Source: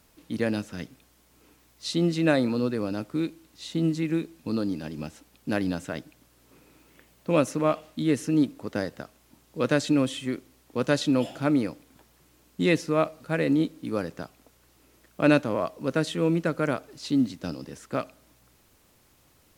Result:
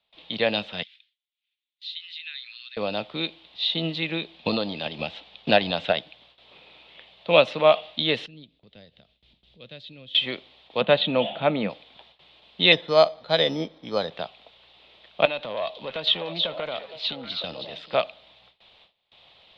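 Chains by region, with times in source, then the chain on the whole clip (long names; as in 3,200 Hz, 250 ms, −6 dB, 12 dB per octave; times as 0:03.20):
0:00.83–0:02.77: downward expander −52 dBFS + Butterworth high-pass 1,700 Hz + downward compressor 2 to 1, threshold −59 dBFS
0:04.34–0:05.96: Butterworth low-pass 8,100 Hz + transient designer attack +10 dB, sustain +3 dB
0:08.26–0:10.15: upward compression, threshold −28 dBFS + guitar amp tone stack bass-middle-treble 10-0-1
0:10.81–0:11.70: moving average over 8 samples + parametric band 200 Hz +11.5 dB 0.43 octaves
0:12.72–0:14.12: inverse Chebyshev low-pass filter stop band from 8,600 Hz, stop band 70 dB + bad sample-rate conversion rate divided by 8×, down filtered, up hold
0:15.25–0:17.94: downward compressor 16 to 1, threshold −26 dBFS + tube saturation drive 21 dB, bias 0.45 + echo through a band-pass that steps 320 ms, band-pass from 4,400 Hz, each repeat −1.4 octaves, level −3 dB
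whole clip: drawn EQ curve 200 Hz 0 dB, 280 Hz −13 dB, 690 Hz +4 dB, 1,500 Hz −6 dB, 3,600 Hz +14 dB, 6,300 Hz −21 dB; noise gate with hold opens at −50 dBFS; three-way crossover with the lows and the highs turned down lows −14 dB, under 280 Hz, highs −20 dB, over 6,800 Hz; level +7 dB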